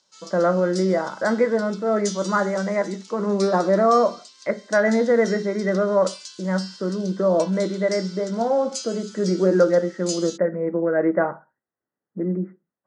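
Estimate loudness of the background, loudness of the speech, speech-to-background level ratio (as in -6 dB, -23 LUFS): -38.0 LUFS, -22.0 LUFS, 16.0 dB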